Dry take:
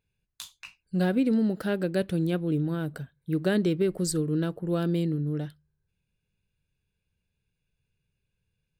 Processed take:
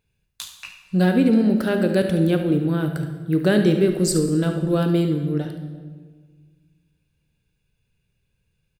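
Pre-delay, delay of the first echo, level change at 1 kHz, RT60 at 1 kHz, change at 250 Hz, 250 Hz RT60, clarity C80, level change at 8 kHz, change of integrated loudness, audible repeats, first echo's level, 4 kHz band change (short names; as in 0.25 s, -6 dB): 17 ms, 72 ms, +8.0 dB, 1.4 s, +7.5 dB, 2.0 s, 9.5 dB, +7.5 dB, +7.5 dB, 1, -11.5 dB, +7.5 dB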